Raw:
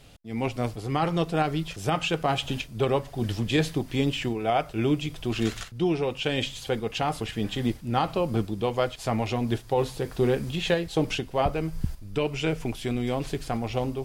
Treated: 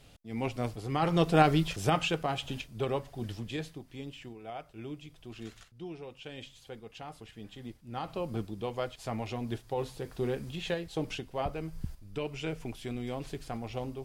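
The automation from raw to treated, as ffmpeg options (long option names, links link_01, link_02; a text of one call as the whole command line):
ffmpeg -i in.wav -af "volume=11.5dB,afade=type=in:start_time=0.95:duration=0.49:silence=0.398107,afade=type=out:start_time=1.44:duration=0.86:silence=0.298538,afade=type=out:start_time=3.02:duration=0.78:silence=0.316228,afade=type=in:start_time=7.82:duration=0.4:silence=0.375837" out.wav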